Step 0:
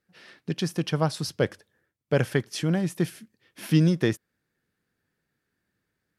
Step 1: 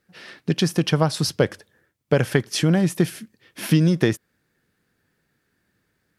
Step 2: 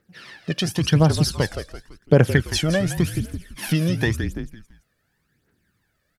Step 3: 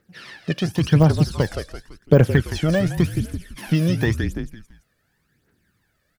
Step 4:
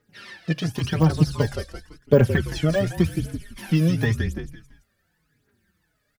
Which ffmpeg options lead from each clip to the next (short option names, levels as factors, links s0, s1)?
-af "acompressor=threshold=0.0794:ratio=5,volume=2.66"
-filter_complex "[0:a]asplit=5[s0][s1][s2][s3][s4];[s1]adelay=168,afreqshift=-42,volume=0.316[s5];[s2]adelay=336,afreqshift=-84,volume=0.123[s6];[s3]adelay=504,afreqshift=-126,volume=0.0479[s7];[s4]adelay=672,afreqshift=-168,volume=0.0188[s8];[s0][s5][s6][s7][s8]amix=inputs=5:normalize=0,aphaser=in_gain=1:out_gain=1:delay=1.8:decay=0.62:speed=0.91:type=triangular,volume=0.794"
-af "deesser=0.85,volume=1.26"
-filter_complex "[0:a]bandreject=f=68.91:t=h:w=4,bandreject=f=137.82:t=h:w=4,asplit=2[s0][s1];[s1]adelay=4.3,afreqshift=-1.5[s2];[s0][s2]amix=inputs=2:normalize=1,volume=1.12"